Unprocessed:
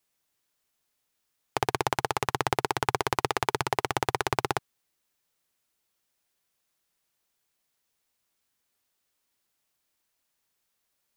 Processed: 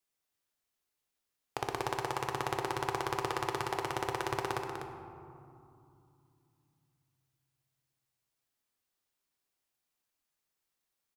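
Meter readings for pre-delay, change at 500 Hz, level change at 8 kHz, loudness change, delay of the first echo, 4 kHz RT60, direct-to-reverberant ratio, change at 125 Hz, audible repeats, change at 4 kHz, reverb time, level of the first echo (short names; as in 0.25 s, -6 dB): 3 ms, -5.5 dB, -8.0 dB, -6.5 dB, 0.248 s, 1.1 s, 2.0 dB, -6.0 dB, 1, -7.5 dB, 2.7 s, -7.5 dB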